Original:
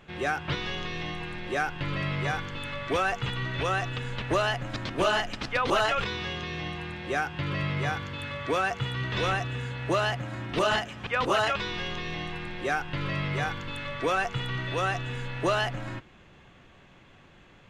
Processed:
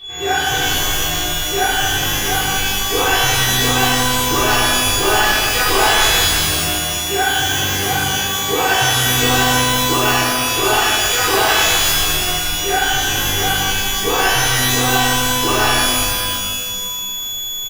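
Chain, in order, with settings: whine 3400 Hz -38 dBFS; comb 2.6 ms, depth 95%; in parallel at -7 dB: short-mantissa float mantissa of 2-bit; on the sum: de-hum 58.26 Hz, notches 37; shimmer reverb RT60 1.7 s, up +12 st, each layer -2 dB, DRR -9 dB; gain -6 dB

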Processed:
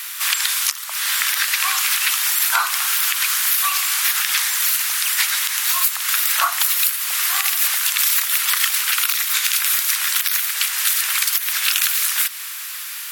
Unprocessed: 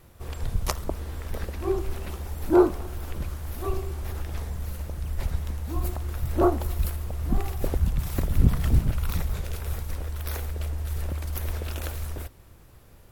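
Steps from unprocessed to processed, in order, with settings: Bessel high-pass 2200 Hz, order 6; compressor 6:1, threshold -49 dBFS, peak gain reduction 21 dB; maximiser +35 dB; gain -1 dB

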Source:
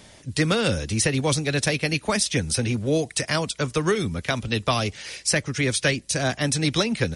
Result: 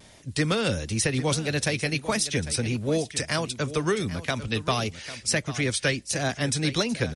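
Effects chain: echo 0.797 s -14 dB; vibrato 1.5 Hz 48 cents; gain -3 dB

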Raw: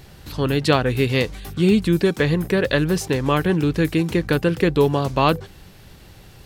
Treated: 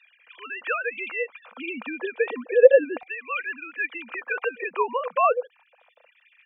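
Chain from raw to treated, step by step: sine-wave speech; small resonant body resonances 230/490/2400 Hz, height 16 dB, ringing for 45 ms; LFO high-pass saw down 0.33 Hz 620–2100 Hz; gain -6.5 dB

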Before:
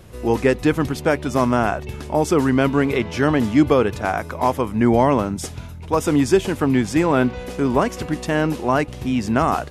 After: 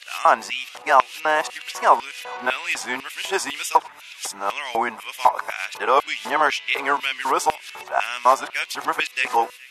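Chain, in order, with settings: whole clip reversed; narrowing echo 0.418 s, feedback 78%, band-pass 2100 Hz, level -22 dB; LFO high-pass square 2 Hz 870–2600 Hz; gain +1.5 dB

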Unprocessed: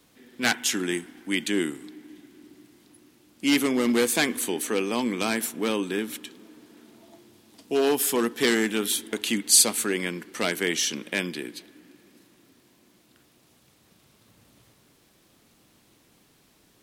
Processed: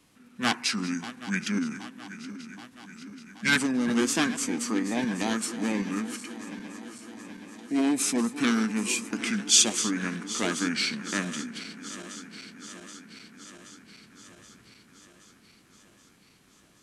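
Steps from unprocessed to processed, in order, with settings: regenerating reverse delay 0.388 s, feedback 80%, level -14 dB; formant shift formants -5 st; gain -2 dB

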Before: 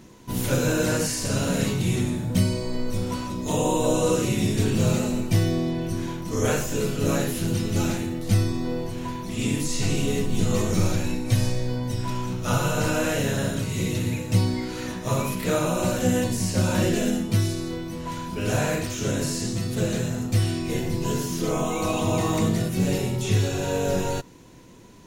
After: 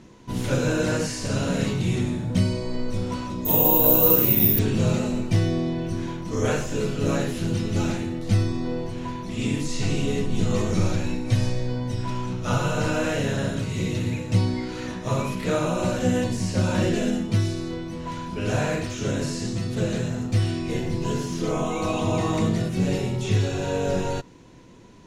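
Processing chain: air absorption 62 m; 3.45–4.59 careless resampling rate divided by 3×, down filtered, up zero stuff

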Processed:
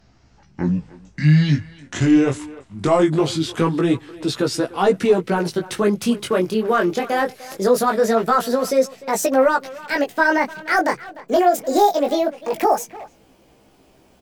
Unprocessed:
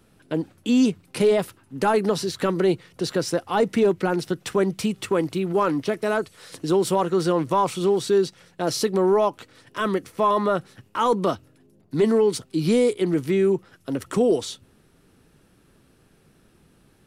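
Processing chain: speed glide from 50% -> 190%; chorus 0.22 Hz, delay 15 ms, depth 7.7 ms; speakerphone echo 0.3 s, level -17 dB; gain +6.5 dB

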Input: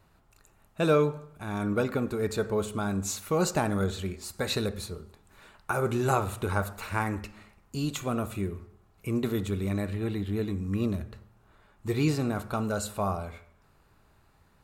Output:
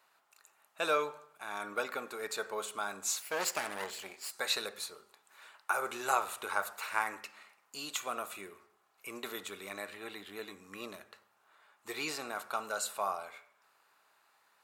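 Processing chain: 3.22–4.31 minimum comb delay 0.41 ms; HPF 830 Hz 12 dB/oct

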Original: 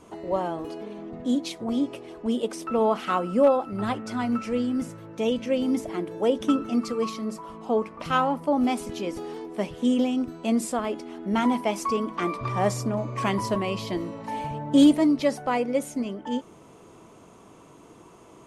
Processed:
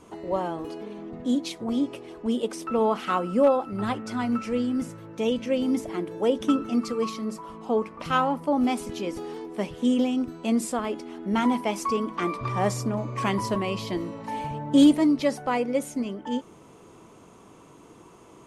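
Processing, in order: bell 650 Hz -3.5 dB 0.25 oct

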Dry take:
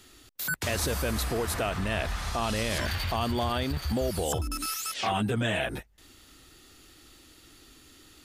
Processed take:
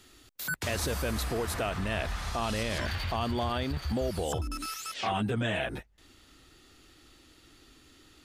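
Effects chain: high shelf 8300 Hz -3.5 dB, from 2.63 s -10.5 dB; gain -2 dB

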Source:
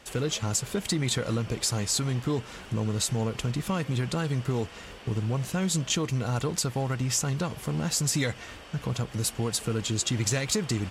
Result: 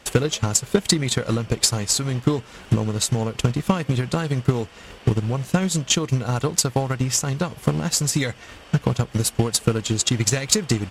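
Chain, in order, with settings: transient shaper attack +11 dB, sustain -4 dB; gain +3 dB

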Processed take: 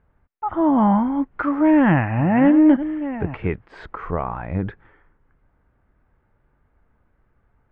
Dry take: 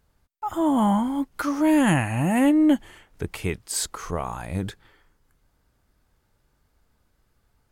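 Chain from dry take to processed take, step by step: 1.6–3.65 reverse delay 0.581 s, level -12 dB; LPF 2100 Hz 24 dB/oct; gain +4 dB

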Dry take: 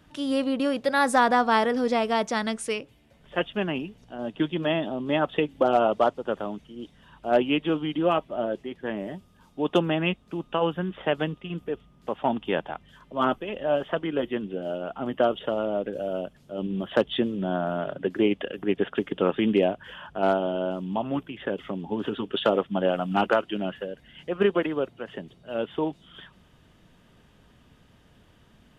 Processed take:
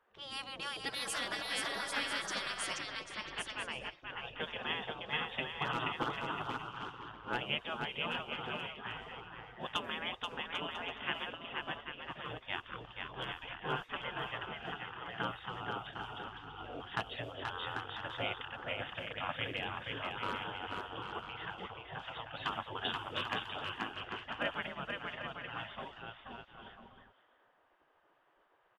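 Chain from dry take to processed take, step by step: bouncing-ball echo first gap 0.48 s, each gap 0.65×, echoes 5; low-pass opened by the level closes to 1200 Hz, open at -19.5 dBFS; spectral gate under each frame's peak -15 dB weak; gain -4 dB

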